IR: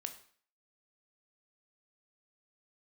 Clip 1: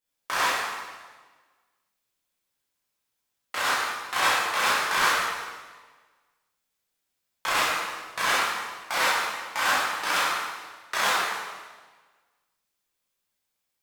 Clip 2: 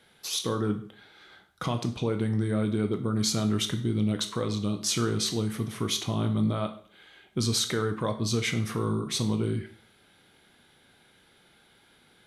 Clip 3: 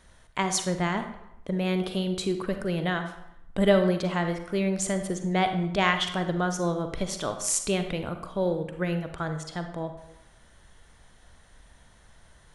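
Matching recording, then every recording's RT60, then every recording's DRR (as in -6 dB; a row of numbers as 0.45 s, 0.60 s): 2; 1.4 s, 0.50 s, 0.85 s; -9.5 dB, 6.5 dB, 7.0 dB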